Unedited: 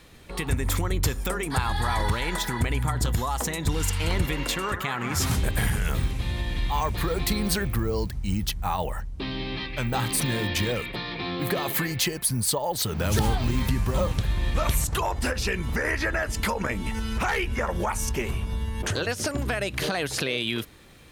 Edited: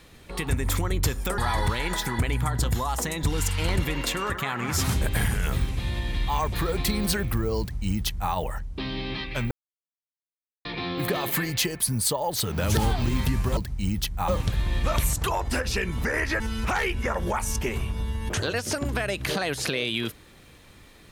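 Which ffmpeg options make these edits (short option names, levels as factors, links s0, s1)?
-filter_complex "[0:a]asplit=7[s0][s1][s2][s3][s4][s5][s6];[s0]atrim=end=1.382[s7];[s1]atrim=start=1.798:end=9.93,asetpts=PTS-STARTPTS,afade=t=out:st=8.128:d=0.004:c=hsin[s8];[s2]atrim=start=9.93:end=11.07,asetpts=PTS-STARTPTS,volume=0[s9];[s3]atrim=start=11.07:end=13.992,asetpts=PTS-STARTPTS,afade=t=in:d=0.004:c=hsin[s10];[s4]atrim=start=8.018:end=8.732[s11];[s5]atrim=start=13.988:end=16.112[s12];[s6]atrim=start=16.928[s13];[s8][s9][s10]concat=n=3:v=0:a=1[s14];[s7][s14]acrossfade=d=0.004:c1=hsin:c2=hsin[s15];[s15][s11]acrossfade=d=0.004:c1=hsin:c2=hsin[s16];[s16][s12]acrossfade=d=0.004:c1=hsin:c2=hsin[s17];[s17][s13]acrossfade=d=0.004:c1=hsin:c2=hsin"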